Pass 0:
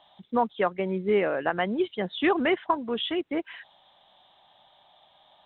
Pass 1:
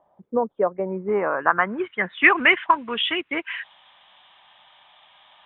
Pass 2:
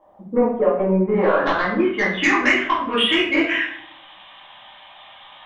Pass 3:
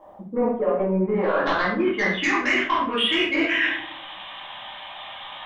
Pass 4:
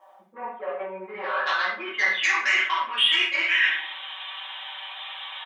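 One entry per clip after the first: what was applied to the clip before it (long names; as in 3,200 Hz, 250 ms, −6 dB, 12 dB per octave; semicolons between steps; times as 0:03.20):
flat-topped bell 1,600 Hz +10.5 dB; low-pass filter sweep 500 Hz → 3,100 Hz, 0:00.50–0:02.60; level −1.5 dB
downward compressor 5 to 1, threshold −23 dBFS, peak gain reduction 12.5 dB; sine wavefolder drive 6 dB, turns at −9.5 dBFS; rectangular room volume 110 cubic metres, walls mixed, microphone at 2.2 metres; level −8.5 dB
dynamic equaliser 4,600 Hz, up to +4 dB, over −35 dBFS, Q 1.1; reversed playback; downward compressor 6 to 1, threshold −26 dBFS, peak gain reduction 14 dB; reversed playback; level +6.5 dB
high-pass filter 1,200 Hz 12 dB per octave; comb filter 5.3 ms, depth 88%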